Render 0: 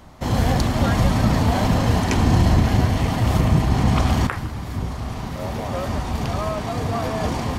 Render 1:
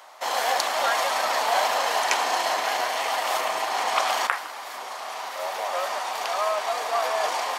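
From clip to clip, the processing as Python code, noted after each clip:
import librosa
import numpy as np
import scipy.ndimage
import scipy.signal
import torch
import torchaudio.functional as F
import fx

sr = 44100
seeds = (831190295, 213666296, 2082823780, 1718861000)

y = scipy.signal.sosfilt(scipy.signal.butter(4, 620.0, 'highpass', fs=sr, output='sos'), x)
y = y * librosa.db_to_amplitude(3.5)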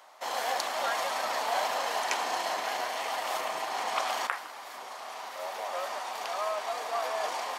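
y = fx.low_shelf(x, sr, hz=210.0, db=9.0)
y = y * librosa.db_to_amplitude(-7.5)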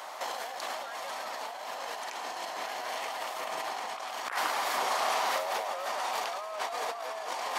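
y = fx.over_compress(x, sr, threshold_db=-41.0, ratio=-1.0)
y = y * librosa.db_to_amplitude(5.5)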